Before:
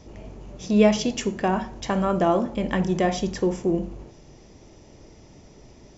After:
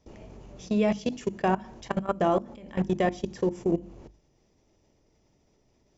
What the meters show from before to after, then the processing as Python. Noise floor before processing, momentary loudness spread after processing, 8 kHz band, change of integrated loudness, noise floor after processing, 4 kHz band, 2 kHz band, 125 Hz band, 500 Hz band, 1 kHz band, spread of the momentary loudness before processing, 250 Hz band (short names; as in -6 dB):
-50 dBFS, 9 LU, n/a, -5.0 dB, -67 dBFS, -10.0 dB, -5.0 dB, -5.0 dB, -4.5 dB, -3.5 dB, 18 LU, -5.5 dB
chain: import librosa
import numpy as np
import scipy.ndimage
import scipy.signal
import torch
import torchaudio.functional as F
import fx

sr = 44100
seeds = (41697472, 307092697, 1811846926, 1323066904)

y = fx.level_steps(x, sr, step_db=22)
y = fx.hum_notches(y, sr, base_hz=50, count=7)